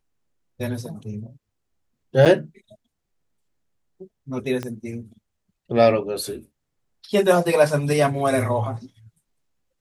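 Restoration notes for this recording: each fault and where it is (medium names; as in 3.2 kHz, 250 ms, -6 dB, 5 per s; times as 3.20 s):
2.25–2.26 s: dropout 6.9 ms
4.63 s: pop -15 dBFS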